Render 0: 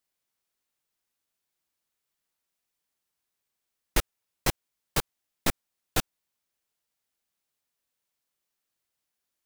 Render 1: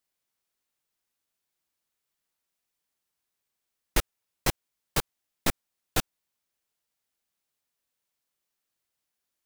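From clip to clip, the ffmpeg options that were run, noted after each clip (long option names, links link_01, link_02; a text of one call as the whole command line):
ffmpeg -i in.wav -af anull out.wav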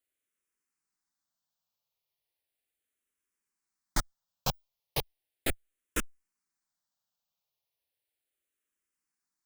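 ffmpeg -i in.wav -filter_complex "[0:a]asplit=2[link_01][link_02];[link_02]afreqshift=-0.36[link_03];[link_01][link_03]amix=inputs=2:normalize=1,volume=-1.5dB" out.wav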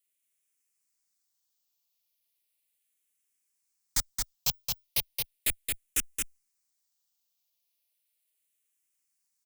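ffmpeg -i in.wav -filter_complex "[0:a]acrossover=split=170|1200[link_01][link_02][link_03];[link_02]asoftclip=type=hard:threshold=-37dB[link_04];[link_01][link_04][link_03]amix=inputs=3:normalize=0,aexciter=amount=3.6:drive=3.1:freq=2100,aecho=1:1:222:0.631,volume=-6dB" out.wav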